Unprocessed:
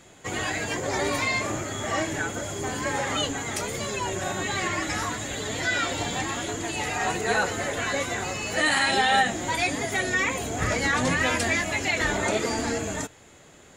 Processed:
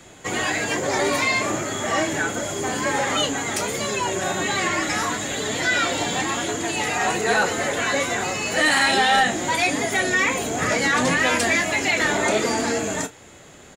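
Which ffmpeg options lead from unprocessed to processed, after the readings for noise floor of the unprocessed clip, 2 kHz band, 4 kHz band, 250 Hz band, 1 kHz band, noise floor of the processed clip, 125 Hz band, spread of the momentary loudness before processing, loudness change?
−51 dBFS, +4.5 dB, +4.5 dB, +4.5 dB, +4.5 dB, −46 dBFS, 0.0 dB, 7 LU, +4.5 dB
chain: -filter_complex "[0:a]asplit=2[link_01][link_02];[link_02]adelay=33,volume=-13dB[link_03];[link_01][link_03]amix=inputs=2:normalize=0,acrossover=split=130|760|5900[link_04][link_05][link_06][link_07];[link_04]acompressor=threshold=-52dB:ratio=6[link_08];[link_08][link_05][link_06][link_07]amix=inputs=4:normalize=0,asoftclip=type=tanh:threshold=-16dB,volume=5.5dB"

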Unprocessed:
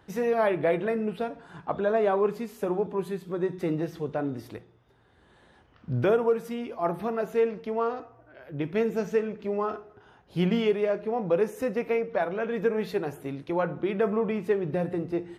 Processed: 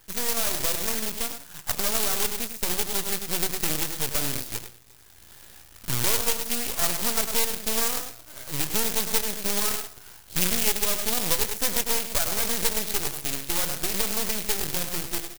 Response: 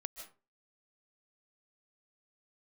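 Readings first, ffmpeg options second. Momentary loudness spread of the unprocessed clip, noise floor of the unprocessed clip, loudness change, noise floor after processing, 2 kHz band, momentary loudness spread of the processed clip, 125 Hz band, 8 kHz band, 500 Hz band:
10 LU, −60 dBFS, +3.0 dB, −50 dBFS, +4.5 dB, 8 LU, −3.5 dB, can't be measured, −9.5 dB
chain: -filter_complex "[0:a]lowpass=frequency=3600:poles=1,asplit=2[link_01][link_02];[link_02]adelay=99.13,volume=-9dB,highshelf=frequency=4000:gain=-2.23[link_03];[link_01][link_03]amix=inputs=2:normalize=0,aeval=exprs='max(val(0),0)':channel_layout=same,lowshelf=frequency=140:gain=11.5,dynaudnorm=framelen=540:gausssize=11:maxgain=11.5dB,acrusher=bits=3:mode=log:mix=0:aa=0.000001,acompressor=threshold=-20dB:ratio=3,crystalizer=i=9:c=0,volume=-6dB"

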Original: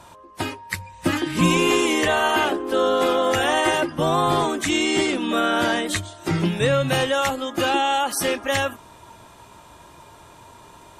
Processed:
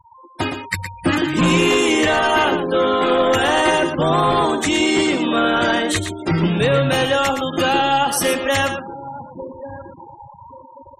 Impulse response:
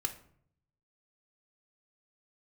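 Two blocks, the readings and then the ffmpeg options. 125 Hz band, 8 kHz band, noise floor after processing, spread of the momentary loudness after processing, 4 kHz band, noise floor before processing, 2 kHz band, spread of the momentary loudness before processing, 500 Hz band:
+4.0 dB, +2.5 dB, −44 dBFS, 15 LU, +3.5 dB, −47 dBFS, +4.0 dB, 8 LU, +4.0 dB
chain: -filter_complex "[0:a]aeval=exprs='0.422*sin(PI/2*1.78*val(0)/0.422)':channel_layout=same,asplit=2[link_01][link_02];[link_02]adelay=1140,lowpass=frequency=870:poles=1,volume=-14.5dB,asplit=2[link_03][link_04];[link_04]adelay=1140,lowpass=frequency=870:poles=1,volume=0.37,asplit=2[link_05][link_06];[link_06]adelay=1140,lowpass=frequency=870:poles=1,volume=0.37[link_07];[link_03][link_05][link_07]amix=inputs=3:normalize=0[link_08];[link_01][link_08]amix=inputs=2:normalize=0,afftfilt=real='re*gte(hypot(re,im),0.0708)':imag='im*gte(hypot(re,im),0.0708)':win_size=1024:overlap=0.75,asplit=2[link_09][link_10];[link_10]aecho=0:1:116:0.376[link_11];[link_09][link_11]amix=inputs=2:normalize=0,dynaudnorm=framelen=160:gausssize=5:maxgain=6dB,volume=-6dB"

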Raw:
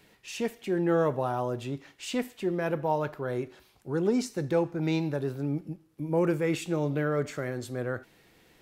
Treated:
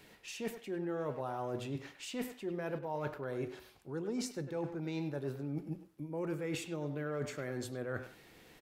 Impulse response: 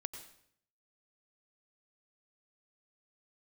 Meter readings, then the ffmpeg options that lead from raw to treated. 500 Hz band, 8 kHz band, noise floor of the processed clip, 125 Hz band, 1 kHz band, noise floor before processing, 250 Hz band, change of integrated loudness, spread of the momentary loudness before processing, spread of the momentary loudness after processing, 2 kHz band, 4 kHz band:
−10.0 dB, −5.0 dB, −60 dBFS, −9.5 dB, −10.0 dB, −62 dBFS, −9.5 dB, −10.0 dB, 9 LU, 6 LU, −8.0 dB, −6.0 dB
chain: -filter_complex "[0:a]bandreject=frequency=60:width_type=h:width=6,bandreject=frequency=120:width_type=h:width=6,bandreject=frequency=180:width_type=h:width=6,areverse,acompressor=threshold=-37dB:ratio=6,areverse,asplit=2[link_01][link_02];[link_02]adelay=100,highpass=300,lowpass=3400,asoftclip=type=hard:threshold=-35.5dB,volume=-9dB[link_03];[link_01][link_03]amix=inputs=2:normalize=0,volume=1dB"

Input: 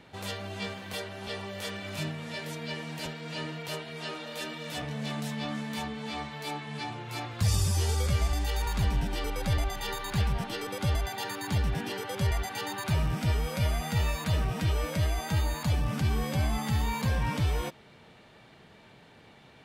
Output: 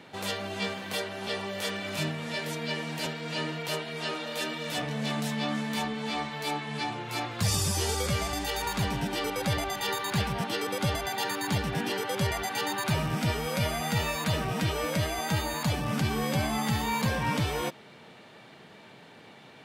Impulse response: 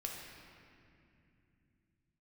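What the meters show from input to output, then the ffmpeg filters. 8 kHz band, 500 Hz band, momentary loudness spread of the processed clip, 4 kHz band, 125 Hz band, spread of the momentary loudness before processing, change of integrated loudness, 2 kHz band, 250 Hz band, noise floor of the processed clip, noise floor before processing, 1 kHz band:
+4.5 dB, +4.5 dB, 5 LU, +4.5 dB, −2.5 dB, 9 LU, +1.5 dB, +4.5 dB, +3.5 dB, −51 dBFS, −55 dBFS, +4.5 dB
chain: -af "highpass=150,volume=4.5dB"

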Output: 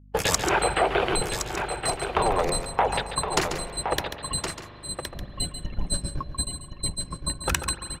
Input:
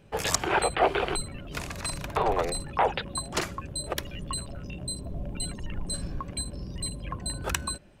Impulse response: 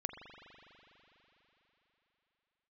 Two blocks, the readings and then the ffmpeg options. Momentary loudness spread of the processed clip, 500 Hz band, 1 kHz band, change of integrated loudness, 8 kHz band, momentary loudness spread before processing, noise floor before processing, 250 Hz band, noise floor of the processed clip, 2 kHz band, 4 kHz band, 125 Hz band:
10 LU, +3.0 dB, +3.0 dB, +3.5 dB, +4.0 dB, 11 LU, −43 dBFS, +2.5 dB, −44 dBFS, +4.0 dB, +4.5 dB, +2.0 dB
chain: -filter_complex "[0:a]agate=range=-49dB:threshold=-30dB:ratio=16:detection=peak,acompressor=threshold=-30dB:ratio=3,aeval=exprs='val(0)+0.00126*(sin(2*PI*50*n/s)+sin(2*PI*2*50*n/s)/2+sin(2*PI*3*50*n/s)/3+sin(2*PI*4*50*n/s)/4+sin(2*PI*5*50*n/s)/5)':channel_layout=same,aecho=1:1:1067:0.422,asplit=2[link_01][link_02];[1:a]atrim=start_sample=2205,adelay=140[link_03];[link_02][link_03]afir=irnorm=-1:irlink=0,volume=-7.5dB[link_04];[link_01][link_04]amix=inputs=2:normalize=0,volume=8.5dB"

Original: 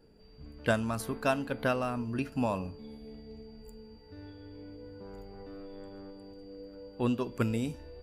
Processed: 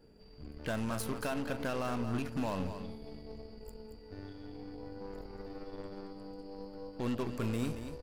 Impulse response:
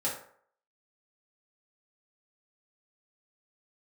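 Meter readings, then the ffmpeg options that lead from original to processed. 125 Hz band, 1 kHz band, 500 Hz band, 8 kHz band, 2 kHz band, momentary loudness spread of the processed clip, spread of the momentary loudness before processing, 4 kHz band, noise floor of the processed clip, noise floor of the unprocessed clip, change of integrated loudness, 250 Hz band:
−3.0 dB, −5.0 dB, −4.5 dB, 0.0 dB, −6.0 dB, 14 LU, 18 LU, −2.5 dB, −54 dBFS, −55 dBFS, −7.0 dB, −3.0 dB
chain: -af "alimiter=level_in=3dB:limit=-24dB:level=0:latency=1:release=50,volume=-3dB,aeval=exprs='0.0447*(cos(1*acos(clip(val(0)/0.0447,-1,1)))-cos(1*PI/2))+0.00501*(cos(8*acos(clip(val(0)/0.0447,-1,1)))-cos(8*PI/2))':channel_layout=same,aecho=1:1:228:0.335"

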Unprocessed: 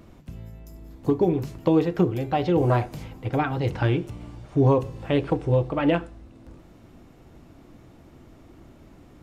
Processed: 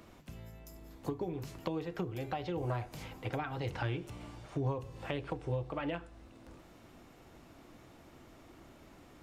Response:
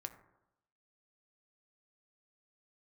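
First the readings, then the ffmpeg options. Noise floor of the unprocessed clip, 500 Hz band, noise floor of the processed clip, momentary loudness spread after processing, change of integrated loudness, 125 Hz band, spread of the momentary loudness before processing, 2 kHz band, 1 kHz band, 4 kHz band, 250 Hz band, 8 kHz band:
−51 dBFS, −15.5 dB, −58 dBFS, 21 LU, −15.0 dB, −13.5 dB, 17 LU, −10.0 dB, −12.5 dB, −9.0 dB, −16.5 dB, can't be measured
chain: -filter_complex "[0:a]lowshelf=frequency=420:gain=-10.5,acrossover=split=120[link_01][link_02];[link_02]acompressor=threshold=-36dB:ratio=5[link_03];[link_01][link_03]amix=inputs=2:normalize=0"

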